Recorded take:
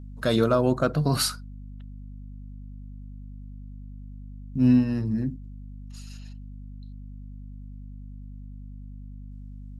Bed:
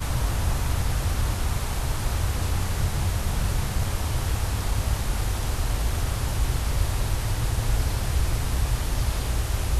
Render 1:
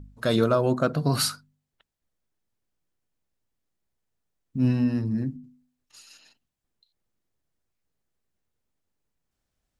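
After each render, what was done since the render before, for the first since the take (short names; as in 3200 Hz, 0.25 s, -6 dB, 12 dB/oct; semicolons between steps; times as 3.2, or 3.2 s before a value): de-hum 50 Hz, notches 5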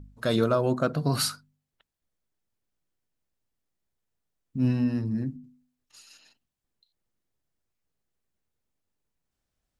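gain -2 dB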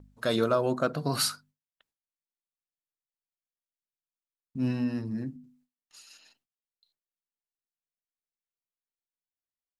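gate with hold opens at -56 dBFS; low shelf 190 Hz -9.5 dB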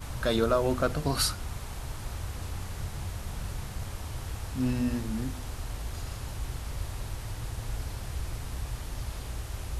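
add bed -11 dB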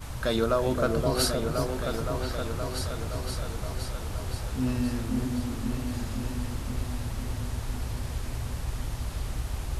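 repeats that get brighter 0.52 s, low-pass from 750 Hz, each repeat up 2 oct, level -3 dB; warbling echo 0.362 s, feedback 48%, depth 107 cents, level -14 dB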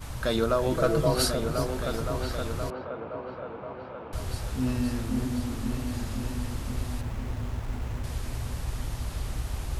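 0.72–1.15 comb 6.2 ms; 2.7–4.13 speaker cabinet 230–2200 Hz, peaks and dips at 520 Hz +5 dB, 960 Hz +3 dB, 1900 Hz -9 dB; 7.01–8.04 running maximum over 9 samples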